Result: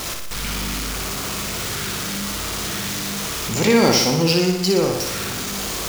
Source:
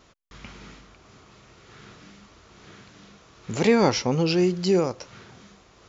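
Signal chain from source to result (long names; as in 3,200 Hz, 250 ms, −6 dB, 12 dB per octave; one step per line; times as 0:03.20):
converter with a step at zero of −26.5 dBFS
high-shelf EQ 3,200 Hz +8.5 dB
on a send: flutter between parallel walls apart 10.3 metres, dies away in 0.79 s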